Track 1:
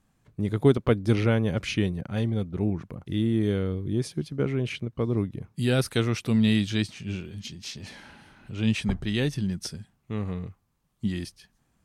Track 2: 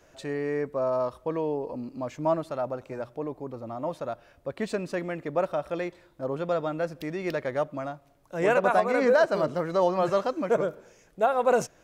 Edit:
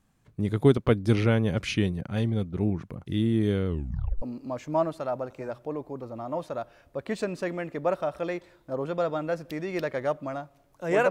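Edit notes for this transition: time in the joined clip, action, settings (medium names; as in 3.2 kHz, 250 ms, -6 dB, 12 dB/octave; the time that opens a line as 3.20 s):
track 1
3.67 s: tape stop 0.55 s
4.22 s: go over to track 2 from 1.73 s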